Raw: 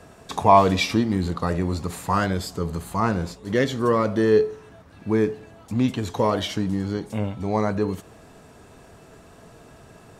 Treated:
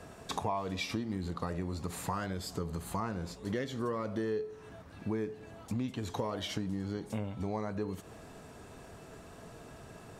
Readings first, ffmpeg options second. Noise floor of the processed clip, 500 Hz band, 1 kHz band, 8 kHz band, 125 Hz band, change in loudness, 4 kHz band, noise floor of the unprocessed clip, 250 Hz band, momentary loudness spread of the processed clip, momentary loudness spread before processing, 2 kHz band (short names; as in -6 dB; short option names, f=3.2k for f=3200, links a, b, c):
-52 dBFS, -15.0 dB, -16.5 dB, -8.5 dB, -12.0 dB, -14.0 dB, -11.0 dB, -49 dBFS, -13.0 dB, 16 LU, 11 LU, -13.5 dB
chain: -af "acompressor=threshold=-30dB:ratio=6,volume=-2.5dB"